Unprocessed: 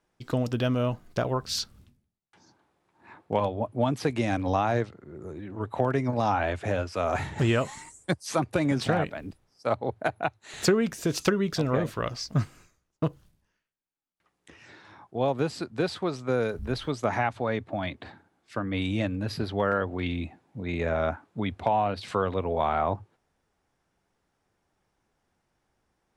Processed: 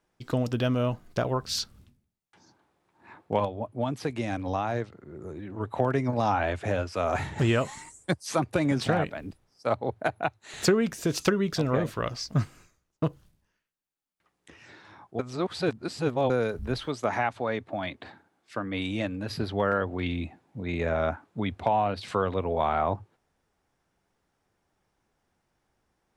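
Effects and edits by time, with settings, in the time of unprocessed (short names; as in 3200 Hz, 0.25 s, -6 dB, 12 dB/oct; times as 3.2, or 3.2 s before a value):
3.45–4.92 gain -4 dB
15.19–16.3 reverse
16.8–19.3 low shelf 150 Hz -8.5 dB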